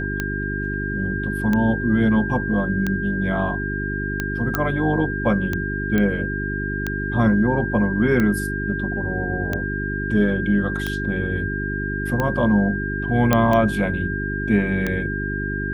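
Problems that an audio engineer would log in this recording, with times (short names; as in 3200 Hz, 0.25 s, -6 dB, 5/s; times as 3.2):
hum 50 Hz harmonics 8 -27 dBFS
tick 45 rpm -10 dBFS
tone 1600 Hz -27 dBFS
4.55 pop -6 dBFS
5.98 pop -10 dBFS
13.33 pop -3 dBFS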